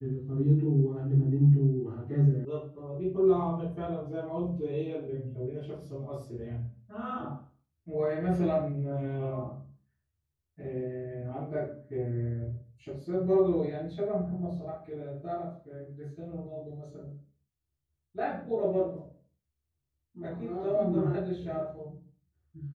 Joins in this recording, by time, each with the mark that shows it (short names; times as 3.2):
2.45 sound cut off